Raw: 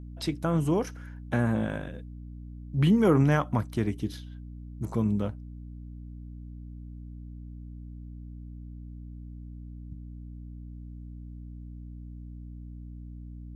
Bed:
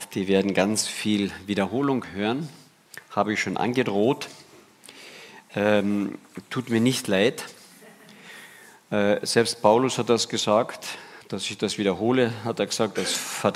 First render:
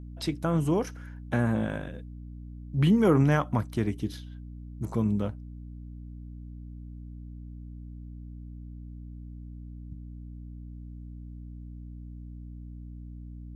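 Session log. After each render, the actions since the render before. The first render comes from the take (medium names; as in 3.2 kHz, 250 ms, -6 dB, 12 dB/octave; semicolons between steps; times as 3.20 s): no audible change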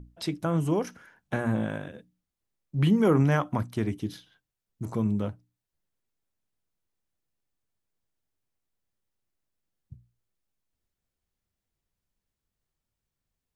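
hum notches 60/120/180/240/300 Hz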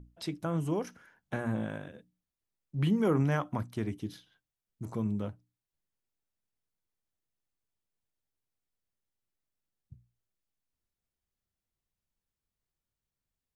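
trim -5.5 dB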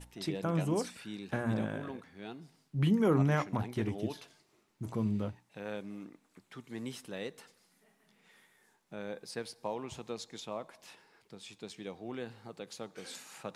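add bed -20 dB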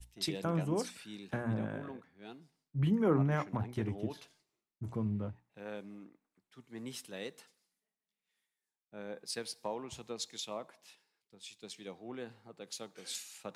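compression 2:1, threshold -37 dBFS, peak gain reduction 8 dB; three bands expanded up and down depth 100%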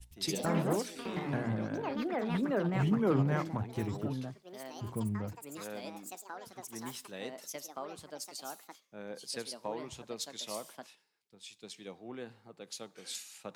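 ever faster or slower copies 108 ms, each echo +4 st, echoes 3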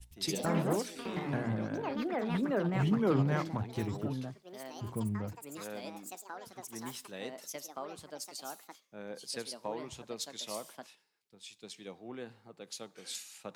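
2.85–3.85 s: peaking EQ 4.2 kHz +5 dB 1 oct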